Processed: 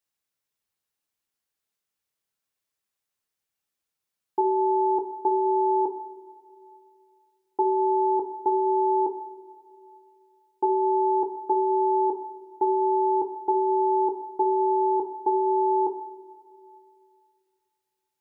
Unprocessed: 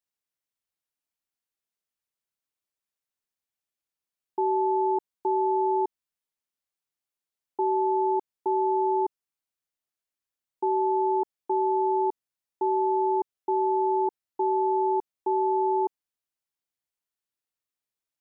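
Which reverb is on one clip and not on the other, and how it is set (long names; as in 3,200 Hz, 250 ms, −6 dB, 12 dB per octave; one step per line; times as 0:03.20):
coupled-rooms reverb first 0.55 s, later 2.5 s, from −14 dB, DRR 3.5 dB
level +3.5 dB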